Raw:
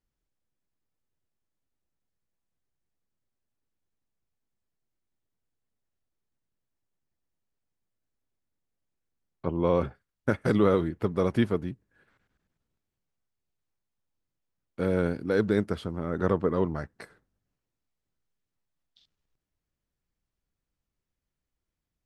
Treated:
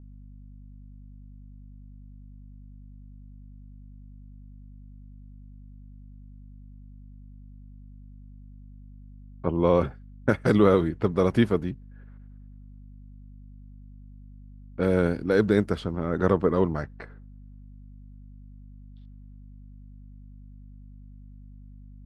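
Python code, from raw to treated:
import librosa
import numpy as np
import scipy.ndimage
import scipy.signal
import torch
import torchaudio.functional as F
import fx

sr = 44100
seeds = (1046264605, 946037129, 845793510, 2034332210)

y = fx.add_hum(x, sr, base_hz=50, snr_db=16)
y = fx.env_lowpass(y, sr, base_hz=1400.0, full_db=-23.0)
y = F.gain(torch.from_numpy(y), 3.5).numpy()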